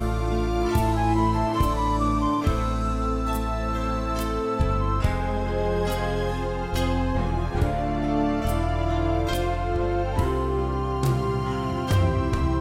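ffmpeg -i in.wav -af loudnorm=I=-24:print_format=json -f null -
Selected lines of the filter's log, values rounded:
"input_i" : "-25.0",
"input_tp" : "-10.7",
"input_lra" : "1.4",
"input_thresh" : "-35.0",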